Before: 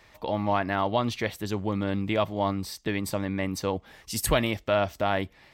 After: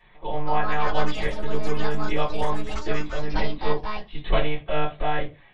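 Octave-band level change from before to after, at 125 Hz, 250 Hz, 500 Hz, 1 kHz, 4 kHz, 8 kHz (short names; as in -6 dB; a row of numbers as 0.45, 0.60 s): 0.0, -3.5, 0.0, +2.5, -0.5, -13.5 dB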